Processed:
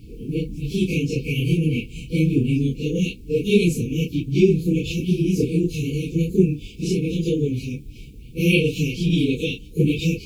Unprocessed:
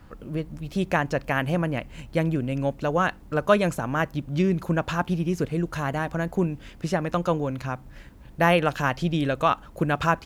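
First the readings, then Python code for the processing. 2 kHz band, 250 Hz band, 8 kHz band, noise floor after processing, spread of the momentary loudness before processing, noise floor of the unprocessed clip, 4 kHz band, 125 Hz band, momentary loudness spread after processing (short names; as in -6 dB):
-2.0 dB, +6.5 dB, +6.5 dB, -41 dBFS, 10 LU, -47 dBFS, +6.5 dB, +6.0 dB, 9 LU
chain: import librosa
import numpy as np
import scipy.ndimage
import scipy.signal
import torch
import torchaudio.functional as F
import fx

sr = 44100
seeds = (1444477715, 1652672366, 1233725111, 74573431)

y = fx.phase_scramble(x, sr, seeds[0], window_ms=100)
y = fx.brickwall_bandstop(y, sr, low_hz=500.0, high_hz=2200.0)
y = y * librosa.db_to_amplitude(6.5)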